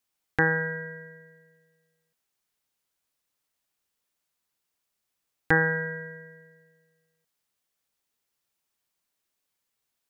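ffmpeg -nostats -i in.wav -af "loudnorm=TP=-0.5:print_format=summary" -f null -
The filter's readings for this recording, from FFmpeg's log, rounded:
Input Integrated:    -26.4 LUFS
Input True Peak:      -7.6 dBTP
Input LRA:            19.3 LU
Input Threshold:     -39.5 LUFS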